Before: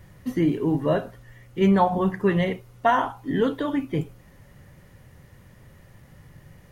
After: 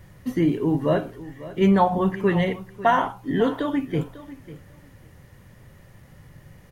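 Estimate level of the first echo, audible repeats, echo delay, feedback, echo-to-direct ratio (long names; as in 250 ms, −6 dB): −16.5 dB, 2, 547 ms, 16%, −16.5 dB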